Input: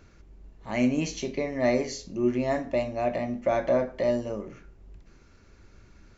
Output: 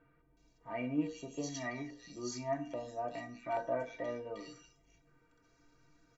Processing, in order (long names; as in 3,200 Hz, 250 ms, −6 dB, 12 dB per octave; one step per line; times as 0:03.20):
low-shelf EQ 150 Hz −10 dB
stiff-string resonator 140 Hz, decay 0.2 s, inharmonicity 0.03
multiband delay without the direct sound lows, highs 370 ms, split 2,500 Hz
0:01.07–0:03.72: auto-filter notch square 1.2 Hz 510–2,200 Hz
level +2 dB